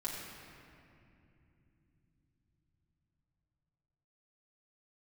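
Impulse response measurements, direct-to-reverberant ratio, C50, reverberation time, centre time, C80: -8.0 dB, 0.0 dB, 2.8 s, 118 ms, 1.5 dB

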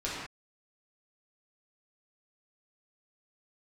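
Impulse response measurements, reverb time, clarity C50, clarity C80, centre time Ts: no single decay rate, -1.0 dB, 1.5 dB, 76 ms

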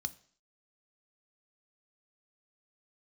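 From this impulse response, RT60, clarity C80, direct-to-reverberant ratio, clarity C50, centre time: 0.50 s, 23.0 dB, 11.5 dB, 20.0 dB, 2 ms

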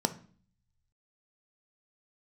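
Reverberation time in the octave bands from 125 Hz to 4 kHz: 1.3 s, 0.75 s, 0.45 s, 0.45 s, 0.45 s, 0.45 s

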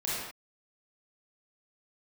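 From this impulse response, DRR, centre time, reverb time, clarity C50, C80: -8.5 dB, 89 ms, no single decay rate, -3.5 dB, 0.5 dB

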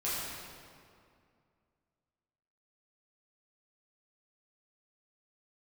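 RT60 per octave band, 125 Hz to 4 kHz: 2.6 s, 2.6 s, 2.4 s, 2.2 s, 1.9 s, 1.5 s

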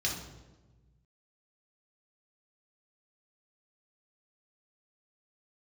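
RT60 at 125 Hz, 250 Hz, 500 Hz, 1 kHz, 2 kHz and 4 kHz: 2.0 s, 1.6 s, 1.4 s, 1.1 s, 0.85 s, 0.80 s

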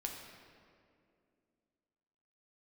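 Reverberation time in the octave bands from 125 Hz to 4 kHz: 2.5 s, 3.1 s, 2.7 s, 2.1 s, 1.9 s, 1.4 s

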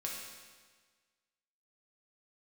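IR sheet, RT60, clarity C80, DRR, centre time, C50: 1.5 s, 3.0 dB, -3.0 dB, 76 ms, 1.0 dB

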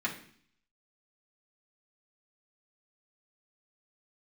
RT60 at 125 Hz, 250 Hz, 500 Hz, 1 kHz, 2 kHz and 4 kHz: 0.70 s, 0.70 s, 0.55 s, 0.55 s, 0.60 s, 0.65 s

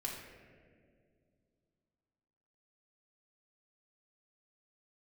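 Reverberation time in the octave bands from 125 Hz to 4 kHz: 3.2 s, 3.1 s, 2.7 s, 1.7 s, 1.6 s, 1.0 s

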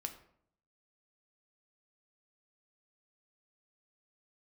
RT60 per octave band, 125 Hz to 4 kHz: 0.85 s, 0.80 s, 0.70 s, 0.60 s, 0.50 s, 0.40 s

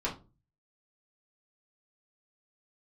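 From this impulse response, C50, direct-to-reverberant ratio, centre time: 11.5 dB, -6.0 dB, 18 ms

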